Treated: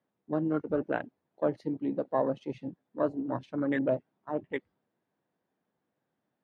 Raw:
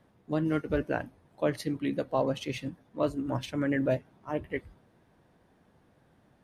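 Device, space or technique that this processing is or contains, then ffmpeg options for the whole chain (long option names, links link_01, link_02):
over-cleaned archive recording: -af "highpass=180,lowpass=5300,afwtdn=0.0141"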